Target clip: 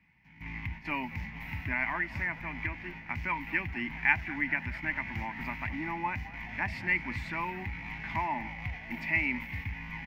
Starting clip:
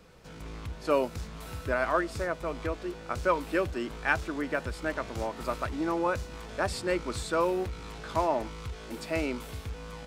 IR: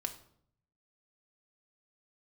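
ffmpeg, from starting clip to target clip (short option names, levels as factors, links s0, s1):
-filter_complex "[0:a]highpass=67,asplit=2[s0][s1];[s1]acompressor=threshold=0.0141:ratio=6,volume=1.06[s2];[s0][s2]amix=inputs=2:normalize=0,agate=range=0.2:threshold=0.0141:ratio=16:detection=peak,firequalizer=gain_entry='entry(250,0);entry(480,-29);entry(870,2);entry(1300,-15);entry(2000,15);entry(3600,-13);entry(5600,-14);entry(8300,-28);entry(15000,-6)':delay=0.05:min_phase=1,asplit=7[s3][s4][s5][s6][s7][s8][s9];[s4]adelay=214,afreqshift=-73,volume=0.126[s10];[s5]adelay=428,afreqshift=-146,volume=0.0794[s11];[s6]adelay=642,afreqshift=-219,volume=0.0501[s12];[s7]adelay=856,afreqshift=-292,volume=0.0316[s13];[s8]adelay=1070,afreqshift=-365,volume=0.0197[s14];[s9]adelay=1284,afreqshift=-438,volume=0.0124[s15];[s3][s10][s11][s12][s13][s14][s15]amix=inputs=7:normalize=0,volume=0.75"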